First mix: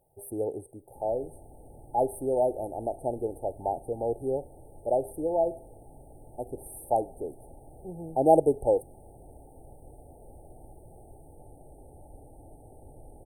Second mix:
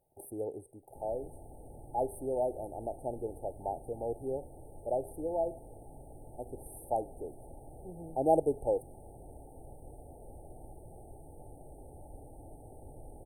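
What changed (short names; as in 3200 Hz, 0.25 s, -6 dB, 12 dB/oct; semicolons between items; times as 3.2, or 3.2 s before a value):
speech -6.5 dB; first sound: unmuted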